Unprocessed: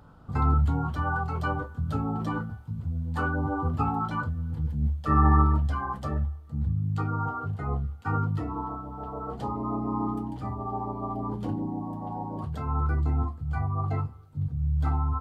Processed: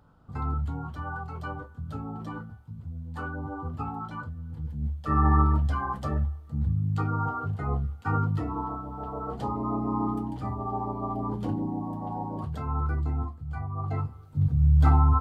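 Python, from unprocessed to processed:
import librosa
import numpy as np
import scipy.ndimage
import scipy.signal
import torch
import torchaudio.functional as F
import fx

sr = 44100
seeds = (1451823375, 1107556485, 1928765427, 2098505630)

y = fx.gain(x, sr, db=fx.line((4.41, -7.0), (5.69, 1.0), (12.24, 1.0), (13.67, -5.5), (14.51, 7.0)))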